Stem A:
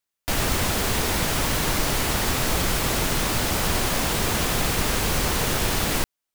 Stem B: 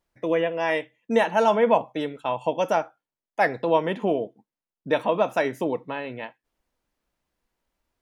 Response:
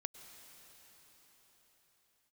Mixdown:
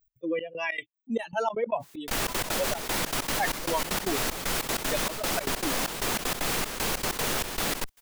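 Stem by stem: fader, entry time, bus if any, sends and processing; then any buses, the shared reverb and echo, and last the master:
-11.5 dB, 1.80 s, no send, dry
-5.0 dB, 0.00 s, no send, per-bin expansion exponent 3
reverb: off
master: bell 65 Hz -13.5 dB 2.1 oct; step gate "x.xxx..xx." 192 bpm -24 dB; fast leveller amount 70%

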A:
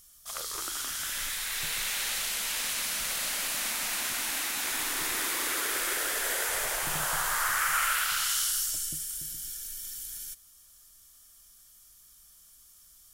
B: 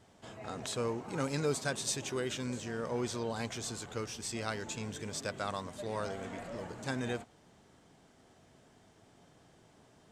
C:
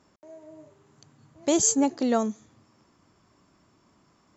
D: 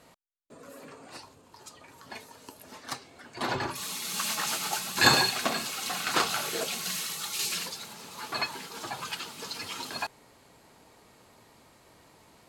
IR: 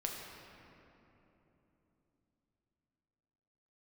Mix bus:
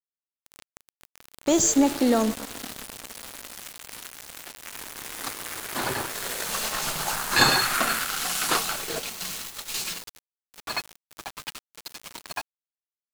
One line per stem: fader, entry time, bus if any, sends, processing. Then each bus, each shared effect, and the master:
+1.5 dB, 0.00 s, send -14.5 dB, Wiener smoothing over 25 samples; notches 60/120/180/240/300/360 Hz; attack slew limiter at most 110 dB/s
-11.0 dB, 0.00 s, no send, spectral limiter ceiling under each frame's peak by 18 dB
+2.0 dB, 0.00 s, send -9 dB, limiter -16 dBFS, peak gain reduction 5.5 dB
0.0 dB, 2.35 s, send -14 dB, dry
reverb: on, RT60 3.4 s, pre-delay 6 ms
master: sample gate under -30 dBFS

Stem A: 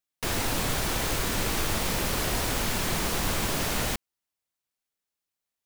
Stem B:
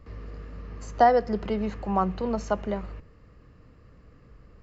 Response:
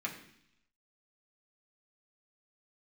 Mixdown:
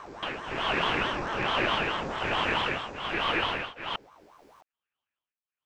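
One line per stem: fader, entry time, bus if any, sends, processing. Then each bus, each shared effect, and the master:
0.0 dB, 0.00 s, no send, synth low-pass 2100 Hz, resonance Q 7.2; beating tremolo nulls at 1.2 Hz
+3.0 dB, 0.00 s, no send, time blur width 1.07 s; high shelf 2600 Hz +10.5 dB; reverb removal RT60 0.62 s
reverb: off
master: ring modulator with a swept carrier 730 Hz, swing 55%, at 4.6 Hz

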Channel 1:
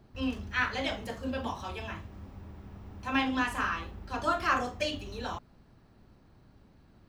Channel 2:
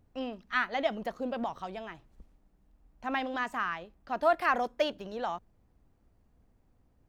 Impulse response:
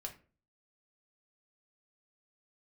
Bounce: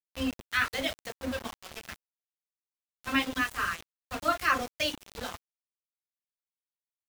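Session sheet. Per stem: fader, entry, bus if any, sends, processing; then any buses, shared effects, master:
+1.0 dB, 0.00 s, no send, reverb removal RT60 1.7 s
-3.5 dB, 0.00 s, polarity flipped, no send, tilt +4.5 dB/oct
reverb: off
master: bell 840 Hz -10 dB 0.37 oct; notch 990 Hz, Q 25; sample gate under -35 dBFS

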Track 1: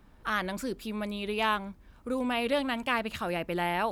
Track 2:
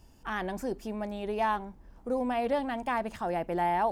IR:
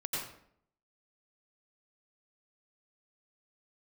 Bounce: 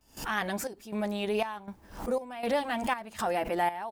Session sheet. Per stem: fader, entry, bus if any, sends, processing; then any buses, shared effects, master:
-6.0 dB, 0.00 s, no send, negative-ratio compressor -33 dBFS
+2.5 dB, 10 ms, no send, tilt +2 dB/oct; backwards sustainer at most 95 dB/s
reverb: off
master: step gate "..xxxxxx." 179 bpm -12 dB

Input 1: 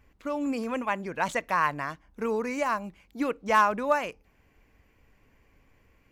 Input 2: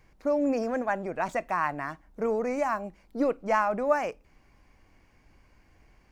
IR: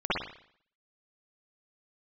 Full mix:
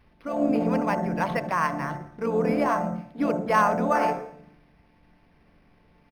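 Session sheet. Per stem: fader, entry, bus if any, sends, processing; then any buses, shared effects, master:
+0.5 dB, 0.00 s, no send, dry
-4.0 dB, 2.4 ms, send -9.5 dB, chord vocoder minor triad, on D3; transient shaper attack -7 dB, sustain +11 dB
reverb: on, pre-delay 50 ms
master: requantised 12-bit, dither triangular; decimation joined by straight lines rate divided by 6×

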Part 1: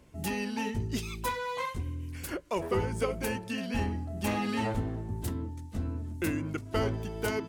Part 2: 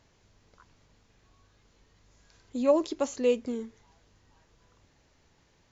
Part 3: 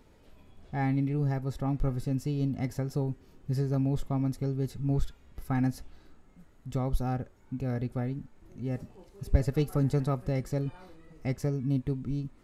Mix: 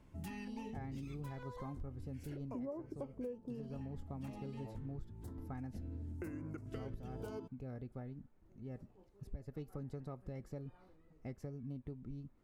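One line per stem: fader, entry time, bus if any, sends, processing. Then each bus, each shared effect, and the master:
-3.5 dB, 0.00 s, no send, compressor 3:1, threshold -34 dBFS, peak gain reduction 8 dB; stepped notch 2.1 Hz 500–3400 Hz; auto duck -7 dB, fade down 1.40 s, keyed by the second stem
-6.5 dB, 0.00 s, no send, Chebyshev low-pass 1100 Hz, order 4; tilt -2 dB/oct
-10.0 dB, 0.00 s, no send, vibrato 5.9 Hz 25 cents; harmonic-percussive split harmonic -4 dB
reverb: off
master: high shelf 2200 Hz -9.5 dB; compressor 16:1, threshold -40 dBFS, peak gain reduction 18 dB

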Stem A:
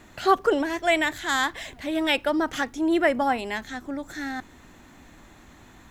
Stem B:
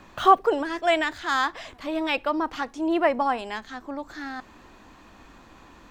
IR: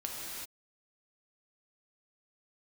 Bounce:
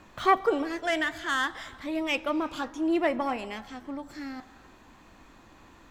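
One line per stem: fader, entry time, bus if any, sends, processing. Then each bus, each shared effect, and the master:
-6.5 dB, 0.00 s, no send, flange 0.55 Hz, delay 9.1 ms, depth 6.9 ms, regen -63%
-6.0 dB, 0.00 s, send -16 dB, self-modulated delay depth 0.094 ms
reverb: on, pre-delay 3 ms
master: dry

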